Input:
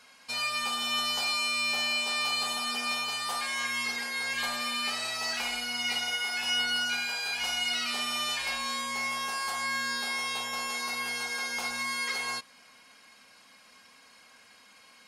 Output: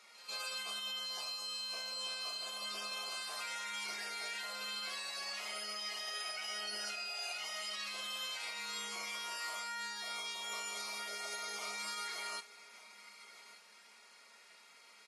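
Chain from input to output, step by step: delay 1194 ms -22 dB; peak limiter -29.5 dBFS, peak gain reduction 10.5 dB; formant-preserving pitch shift -2.5 st; high-pass 340 Hz 12 dB/octave; pre-echo 144 ms -16 dB; on a send at -22 dB: reverberation RT60 2.1 s, pre-delay 3 ms; on the sum: trim -4 dB; Vorbis 32 kbps 32 kHz

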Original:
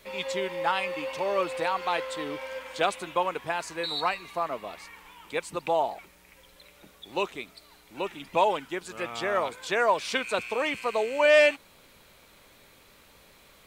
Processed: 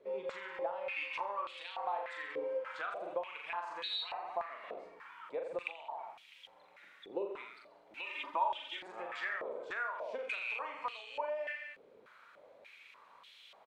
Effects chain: reverse bouncing-ball echo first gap 40 ms, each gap 1.1×, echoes 5; compression 12:1, threshold -32 dBFS, peak gain reduction 20.5 dB; 8.06–8.80 s: comb 3.3 ms, depth 95%; step-sequenced band-pass 3.4 Hz 450–3200 Hz; trim +5 dB

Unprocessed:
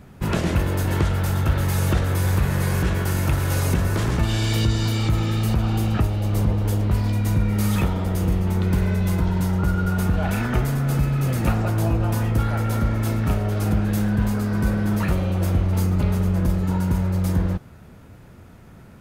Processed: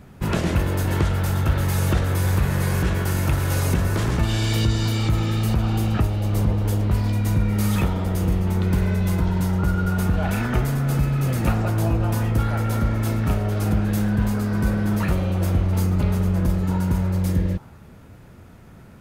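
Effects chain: spectral replace 17.21–17.85 s, 660–1600 Hz both

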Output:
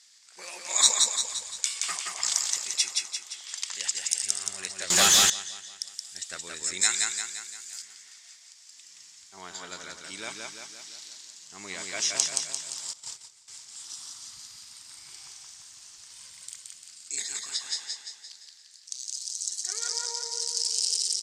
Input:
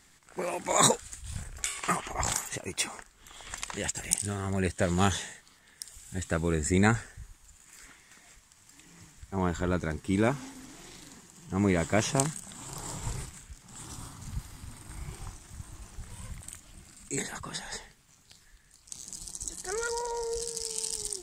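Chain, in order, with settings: band-pass filter 5.1 kHz, Q 2.3; feedback delay 173 ms, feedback 52%, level -3 dB; 4.90–5.30 s: waveshaping leveller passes 5; 6.81–7.82 s: tilt EQ +3 dB/octave; 12.93–13.48 s: gate -46 dBFS, range -16 dB; loudness maximiser +11.5 dB; trim -1 dB; Vorbis 128 kbps 32 kHz

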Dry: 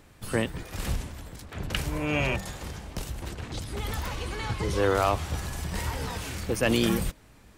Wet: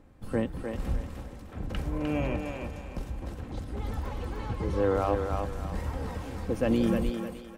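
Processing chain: tilt shelf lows +8.5 dB, about 1.5 kHz; comb 3.8 ms, depth 33%; thinning echo 304 ms, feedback 37%, high-pass 340 Hz, level -4 dB; trim -9 dB

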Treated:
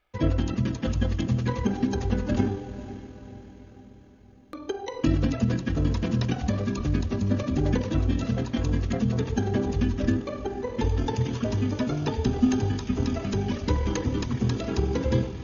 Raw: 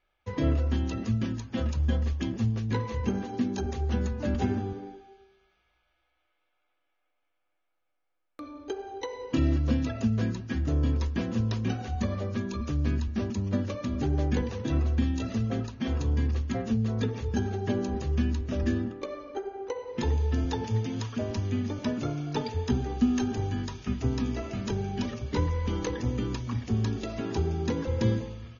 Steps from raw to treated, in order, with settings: echo that smears into a reverb 955 ms, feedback 52%, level -14 dB; granular stretch 0.54×, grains 49 ms; trim +4.5 dB

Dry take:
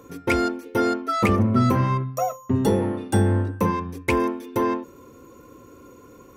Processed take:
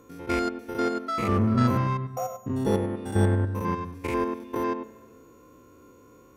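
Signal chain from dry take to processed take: spectrogram pixelated in time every 100 ms; spring tank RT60 1.6 s, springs 41/59 ms, chirp 50 ms, DRR 16 dB; Chebyshev shaper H 3 -17 dB, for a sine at -9 dBFS

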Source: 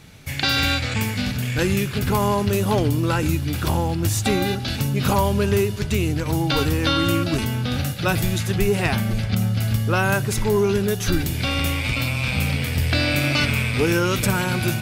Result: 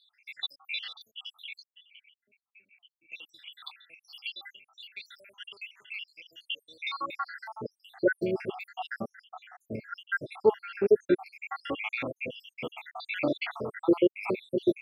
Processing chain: random holes in the spectrogram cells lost 83%; high-pass sweep 3.1 kHz -> 400 Hz, 6.63–7.53 s; 1.63–3.12 s: cascade formant filter i; distance through air 420 m

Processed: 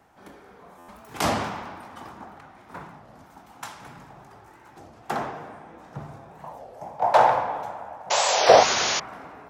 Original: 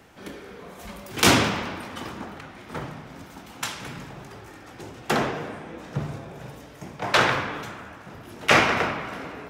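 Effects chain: FFT filter 510 Hz 0 dB, 780 Hz +9 dB, 2.8 kHz -4 dB, 9.5 kHz 0 dB; 8.10–9.00 s: painted sound noise 350–7000 Hz -16 dBFS; 6.45–8.63 s: high-order bell 680 Hz +12 dB 1.2 oct; buffer glitch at 0.78 s, samples 512, times 8; warped record 33 1/3 rpm, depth 250 cents; trim -9 dB

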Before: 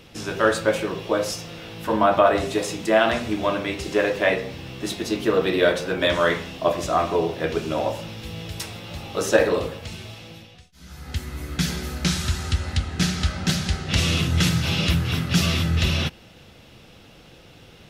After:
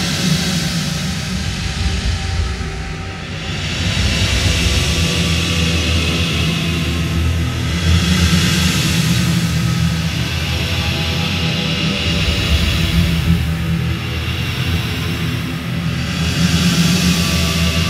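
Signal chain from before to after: hard clipper -7 dBFS, distortion -34 dB; Paulstretch 8.9×, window 0.25 s, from 13.48 s; band noise 1.6–2.8 kHz -42 dBFS; trim +5 dB

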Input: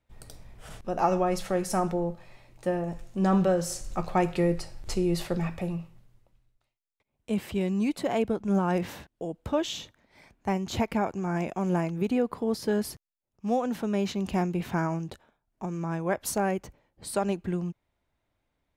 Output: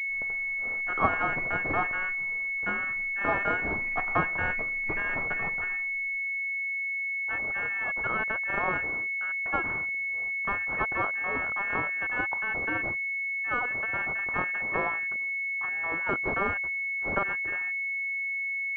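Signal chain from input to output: every band turned upside down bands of 2 kHz; class-D stage that switches slowly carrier 2.2 kHz; trim +5 dB

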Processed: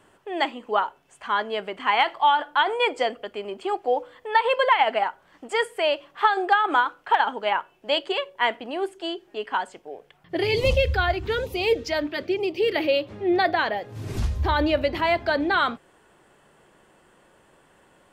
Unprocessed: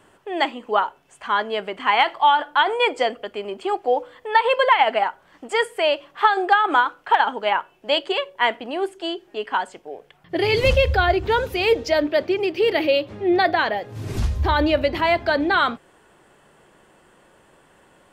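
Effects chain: 10.43–12.76 s: LFO notch sine 1.1 Hz 440–1700 Hz; trim -3 dB

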